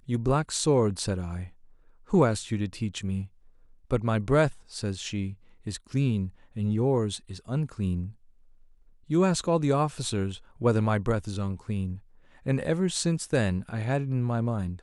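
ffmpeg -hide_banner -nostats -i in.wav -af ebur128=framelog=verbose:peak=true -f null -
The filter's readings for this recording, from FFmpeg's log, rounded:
Integrated loudness:
  I:         -28.0 LUFS
  Threshold: -38.5 LUFS
Loudness range:
  LRA:         2.7 LU
  Threshold: -48.9 LUFS
  LRA low:   -30.1 LUFS
  LRA high:  -27.5 LUFS
True peak:
  Peak:       -9.4 dBFS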